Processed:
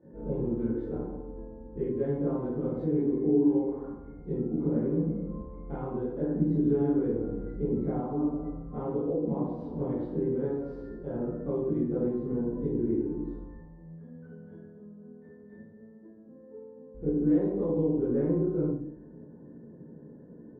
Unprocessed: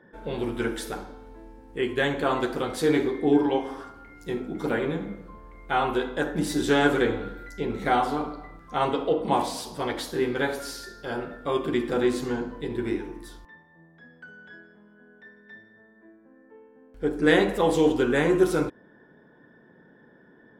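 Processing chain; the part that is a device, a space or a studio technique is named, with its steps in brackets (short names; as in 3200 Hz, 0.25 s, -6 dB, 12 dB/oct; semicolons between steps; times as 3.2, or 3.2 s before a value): television next door (compressor 3:1, threshold -34 dBFS, peak gain reduction 15 dB; LPF 380 Hz 12 dB/oct; reverb RT60 0.60 s, pre-delay 17 ms, DRR -9.5 dB); gain -1.5 dB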